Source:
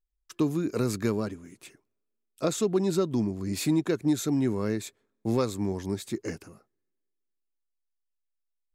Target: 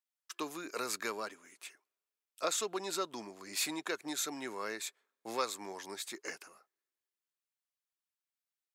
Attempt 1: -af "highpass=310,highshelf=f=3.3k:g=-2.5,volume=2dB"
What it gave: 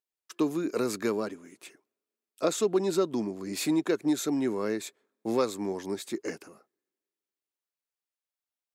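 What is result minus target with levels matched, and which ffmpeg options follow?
250 Hz band +8.0 dB
-af "highpass=920,highshelf=f=3.3k:g=-2.5,volume=2dB"

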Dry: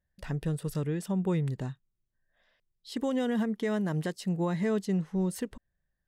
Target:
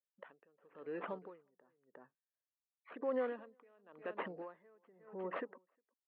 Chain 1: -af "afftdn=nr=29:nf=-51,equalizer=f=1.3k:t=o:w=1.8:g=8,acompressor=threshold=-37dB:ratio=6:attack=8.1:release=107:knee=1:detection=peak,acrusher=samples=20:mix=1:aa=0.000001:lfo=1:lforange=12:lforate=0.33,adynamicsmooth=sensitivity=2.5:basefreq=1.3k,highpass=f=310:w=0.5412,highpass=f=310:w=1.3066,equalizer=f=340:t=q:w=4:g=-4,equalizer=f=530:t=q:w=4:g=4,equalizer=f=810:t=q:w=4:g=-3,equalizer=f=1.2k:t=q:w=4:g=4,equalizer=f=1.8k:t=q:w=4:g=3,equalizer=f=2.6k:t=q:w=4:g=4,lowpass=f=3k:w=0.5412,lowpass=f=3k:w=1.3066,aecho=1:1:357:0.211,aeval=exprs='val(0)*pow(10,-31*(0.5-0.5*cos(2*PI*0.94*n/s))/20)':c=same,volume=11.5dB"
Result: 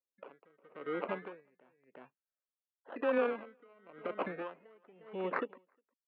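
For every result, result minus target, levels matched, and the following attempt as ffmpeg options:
compressor: peak gain reduction -6 dB; decimation with a swept rate: distortion +5 dB
-af "afftdn=nr=29:nf=-51,equalizer=f=1.3k:t=o:w=1.8:g=8,acompressor=threshold=-44dB:ratio=6:attack=8.1:release=107:knee=1:detection=peak,acrusher=samples=20:mix=1:aa=0.000001:lfo=1:lforange=12:lforate=0.33,adynamicsmooth=sensitivity=2.5:basefreq=1.3k,highpass=f=310:w=0.5412,highpass=f=310:w=1.3066,equalizer=f=340:t=q:w=4:g=-4,equalizer=f=530:t=q:w=4:g=4,equalizer=f=810:t=q:w=4:g=-3,equalizer=f=1.2k:t=q:w=4:g=4,equalizer=f=1.8k:t=q:w=4:g=3,equalizer=f=2.6k:t=q:w=4:g=4,lowpass=f=3k:w=0.5412,lowpass=f=3k:w=1.3066,aecho=1:1:357:0.211,aeval=exprs='val(0)*pow(10,-31*(0.5-0.5*cos(2*PI*0.94*n/s))/20)':c=same,volume=11.5dB"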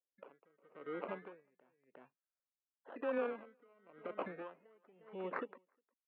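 decimation with a swept rate: distortion +5 dB
-af "afftdn=nr=29:nf=-51,equalizer=f=1.3k:t=o:w=1.8:g=8,acompressor=threshold=-44dB:ratio=6:attack=8.1:release=107:knee=1:detection=peak,acrusher=samples=8:mix=1:aa=0.000001:lfo=1:lforange=4.8:lforate=0.33,adynamicsmooth=sensitivity=2.5:basefreq=1.3k,highpass=f=310:w=0.5412,highpass=f=310:w=1.3066,equalizer=f=340:t=q:w=4:g=-4,equalizer=f=530:t=q:w=4:g=4,equalizer=f=810:t=q:w=4:g=-3,equalizer=f=1.2k:t=q:w=4:g=4,equalizer=f=1.8k:t=q:w=4:g=3,equalizer=f=2.6k:t=q:w=4:g=4,lowpass=f=3k:w=0.5412,lowpass=f=3k:w=1.3066,aecho=1:1:357:0.211,aeval=exprs='val(0)*pow(10,-31*(0.5-0.5*cos(2*PI*0.94*n/s))/20)':c=same,volume=11.5dB"

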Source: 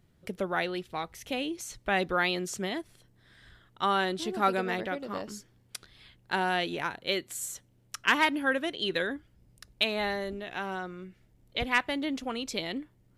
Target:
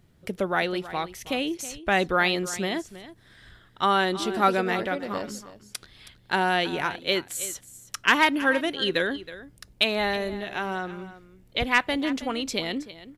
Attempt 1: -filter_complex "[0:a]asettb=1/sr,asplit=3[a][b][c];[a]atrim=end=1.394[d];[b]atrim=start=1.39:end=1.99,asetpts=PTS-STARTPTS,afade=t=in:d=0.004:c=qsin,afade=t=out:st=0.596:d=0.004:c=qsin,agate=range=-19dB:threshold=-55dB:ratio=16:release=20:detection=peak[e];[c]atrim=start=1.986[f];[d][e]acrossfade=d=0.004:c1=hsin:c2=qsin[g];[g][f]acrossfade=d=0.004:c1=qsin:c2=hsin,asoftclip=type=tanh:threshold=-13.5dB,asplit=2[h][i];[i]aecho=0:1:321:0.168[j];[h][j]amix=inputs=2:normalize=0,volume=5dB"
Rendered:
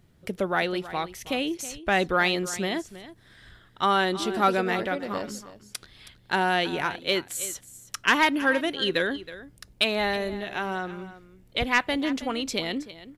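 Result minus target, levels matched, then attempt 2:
soft clip: distortion +13 dB
-filter_complex "[0:a]asettb=1/sr,asplit=3[a][b][c];[a]atrim=end=1.394[d];[b]atrim=start=1.39:end=1.99,asetpts=PTS-STARTPTS,afade=t=in:d=0.004:c=qsin,afade=t=out:st=0.596:d=0.004:c=qsin,agate=range=-19dB:threshold=-55dB:ratio=16:release=20:detection=peak[e];[c]atrim=start=1.986[f];[d][e]acrossfade=d=0.004:c1=hsin:c2=qsin[g];[g][f]acrossfade=d=0.004:c1=qsin:c2=hsin,asoftclip=type=tanh:threshold=-6dB,asplit=2[h][i];[i]aecho=0:1:321:0.168[j];[h][j]amix=inputs=2:normalize=0,volume=5dB"

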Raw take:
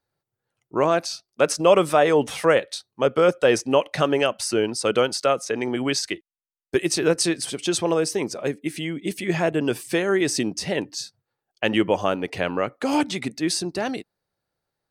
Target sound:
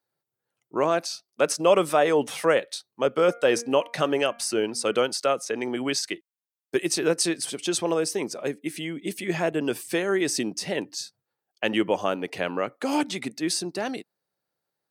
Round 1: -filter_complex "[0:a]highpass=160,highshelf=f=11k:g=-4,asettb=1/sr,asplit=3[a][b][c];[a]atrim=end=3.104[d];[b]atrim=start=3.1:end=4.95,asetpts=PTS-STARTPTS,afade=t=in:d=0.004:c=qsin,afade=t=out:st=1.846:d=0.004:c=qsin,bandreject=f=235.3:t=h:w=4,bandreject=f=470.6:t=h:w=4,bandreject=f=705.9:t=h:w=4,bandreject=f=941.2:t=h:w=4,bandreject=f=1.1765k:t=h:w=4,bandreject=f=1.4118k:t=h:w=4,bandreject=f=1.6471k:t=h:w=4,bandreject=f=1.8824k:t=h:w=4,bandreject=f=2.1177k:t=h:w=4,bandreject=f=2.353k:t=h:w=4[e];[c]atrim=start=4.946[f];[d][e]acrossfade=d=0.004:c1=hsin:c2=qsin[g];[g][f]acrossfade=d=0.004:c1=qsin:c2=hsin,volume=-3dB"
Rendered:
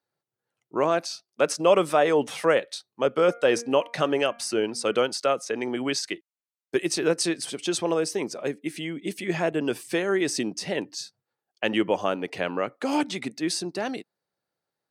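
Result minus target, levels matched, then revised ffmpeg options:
8000 Hz band -2.5 dB
-filter_complex "[0:a]highpass=160,highshelf=f=11k:g=6.5,asettb=1/sr,asplit=3[a][b][c];[a]atrim=end=3.104[d];[b]atrim=start=3.1:end=4.95,asetpts=PTS-STARTPTS,afade=t=in:d=0.004:c=qsin,afade=t=out:st=1.846:d=0.004:c=qsin,bandreject=f=235.3:t=h:w=4,bandreject=f=470.6:t=h:w=4,bandreject=f=705.9:t=h:w=4,bandreject=f=941.2:t=h:w=4,bandreject=f=1.1765k:t=h:w=4,bandreject=f=1.4118k:t=h:w=4,bandreject=f=1.6471k:t=h:w=4,bandreject=f=1.8824k:t=h:w=4,bandreject=f=2.1177k:t=h:w=4,bandreject=f=2.353k:t=h:w=4[e];[c]atrim=start=4.946[f];[d][e]acrossfade=d=0.004:c1=hsin:c2=qsin[g];[g][f]acrossfade=d=0.004:c1=qsin:c2=hsin,volume=-3dB"

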